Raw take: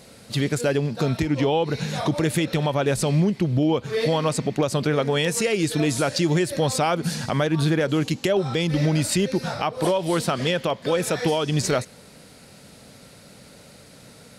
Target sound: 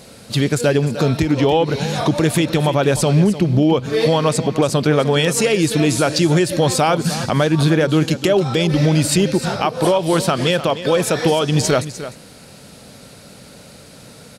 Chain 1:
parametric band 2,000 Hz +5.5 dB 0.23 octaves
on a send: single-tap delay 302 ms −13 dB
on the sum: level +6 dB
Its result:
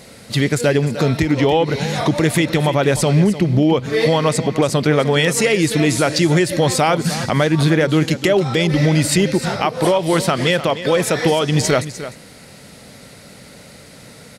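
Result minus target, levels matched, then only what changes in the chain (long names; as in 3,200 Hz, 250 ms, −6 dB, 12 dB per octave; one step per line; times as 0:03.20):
2,000 Hz band +3.0 dB
change: parametric band 2,000 Hz −3.5 dB 0.23 octaves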